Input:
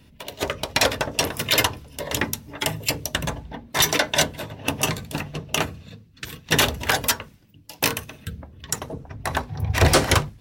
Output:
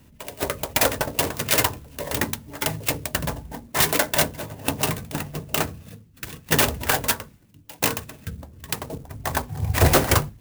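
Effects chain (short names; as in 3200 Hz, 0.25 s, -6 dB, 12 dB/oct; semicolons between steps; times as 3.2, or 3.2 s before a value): clock jitter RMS 0.064 ms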